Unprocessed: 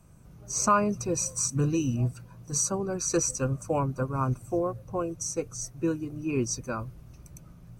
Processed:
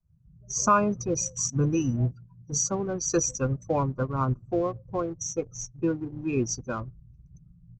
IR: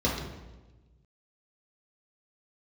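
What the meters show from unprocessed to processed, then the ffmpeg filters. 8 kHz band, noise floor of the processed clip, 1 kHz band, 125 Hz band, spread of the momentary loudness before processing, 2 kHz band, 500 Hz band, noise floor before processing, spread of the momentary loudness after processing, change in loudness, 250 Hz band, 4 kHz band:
0.0 dB, -57 dBFS, +1.5 dB, +1.0 dB, 8 LU, +1.0 dB, +1.5 dB, -52 dBFS, 8 LU, +1.0 dB, +1.5 dB, -0.5 dB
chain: -filter_complex "[0:a]afftdn=nr=29:nf=-39,asplit=2[s0][s1];[s1]aeval=exprs='sgn(val(0))*max(abs(val(0))-0.00944,0)':c=same,volume=0.562[s2];[s0][s2]amix=inputs=2:normalize=0,aresample=16000,aresample=44100,volume=0.794"

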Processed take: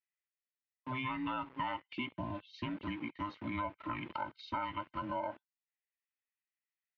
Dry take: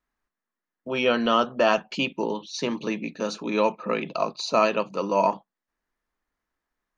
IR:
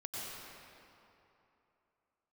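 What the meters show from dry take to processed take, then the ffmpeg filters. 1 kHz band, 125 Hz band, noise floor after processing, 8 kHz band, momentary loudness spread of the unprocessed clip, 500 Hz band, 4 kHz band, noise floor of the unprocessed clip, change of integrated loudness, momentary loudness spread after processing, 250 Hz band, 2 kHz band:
-12.0 dB, -5.5 dB, under -85 dBFS, no reading, 9 LU, -23.0 dB, -17.0 dB, under -85 dBFS, -15.0 dB, 5 LU, -12.0 dB, -13.0 dB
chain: -filter_complex "[0:a]afftfilt=real='real(if(between(b,1,1008),(2*floor((b-1)/24)+1)*24-b,b),0)':imag='imag(if(between(b,1,1008),(2*floor((b-1)/24)+1)*24-b,b),0)*if(between(b,1,1008),-1,1)':win_size=2048:overlap=0.75,acrossover=split=1900[s0][s1];[s0]aeval=exprs='val(0)*gte(abs(val(0)),0.0133)':c=same[s2];[s2][s1]amix=inputs=2:normalize=0,highpass=120,equalizer=f=130:t=q:w=4:g=-3,equalizer=f=200:t=q:w=4:g=-6,equalizer=f=380:t=q:w=4:g=-3,equalizer=f=730:t=q:w=4:g=-7,equalizer=f=1500:t=q:w=4:g=-6,lowpass=f=2700:w=0.5412,lowpass=f=2700:w=1.3066,acompressor=threshold=0.0251:ratio=4,volume=0.631" -ar 48000 -c:a libvorbis -b:a 192k

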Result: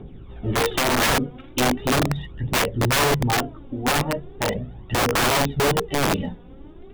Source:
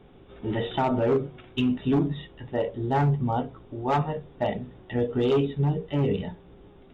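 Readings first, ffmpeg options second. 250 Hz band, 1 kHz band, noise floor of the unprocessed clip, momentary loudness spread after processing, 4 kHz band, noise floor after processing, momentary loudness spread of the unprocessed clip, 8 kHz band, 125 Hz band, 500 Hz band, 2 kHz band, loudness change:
+1.0 dB, +6.0 dB, -52 dBFS, 9 LU, +15.0 dB, -42 dBFS, 10 LU, no reading, +1.5 dB, +2.0 dB, +15.5 dB, +5.0 dB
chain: -af "lowshelf=f=380:g=8.5,aphaser=in_gain=1:out_gain=1:delay=4.2:decay=0.63:speed=0.39:type=triangular,aeval=exprs='(mod(5.31*val(0)+1,2)-1)/5.31':c=same"

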